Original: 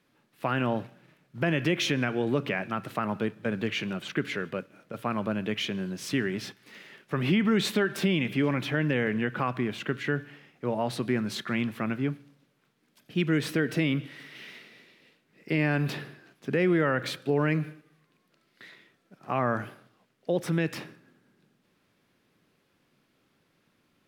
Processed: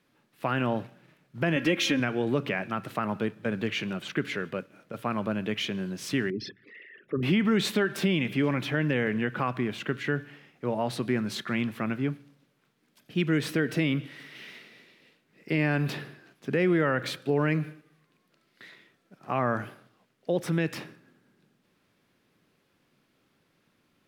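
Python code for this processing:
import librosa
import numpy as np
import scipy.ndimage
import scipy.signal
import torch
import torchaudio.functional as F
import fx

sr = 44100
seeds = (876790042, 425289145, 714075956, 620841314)

y = fx.comb(x, sr, ms=3.7, depth=0.65, at=(1.56, 2.0))
y = fx.envelope_sharpen(y, sr, power=3.0, at=(6.3, 7.23))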